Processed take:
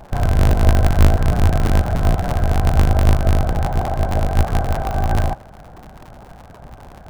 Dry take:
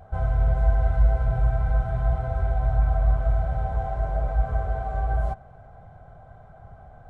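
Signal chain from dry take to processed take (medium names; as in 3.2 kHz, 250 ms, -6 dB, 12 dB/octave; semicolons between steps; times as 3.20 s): cycle switcher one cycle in 2, inverted; trim +7 dB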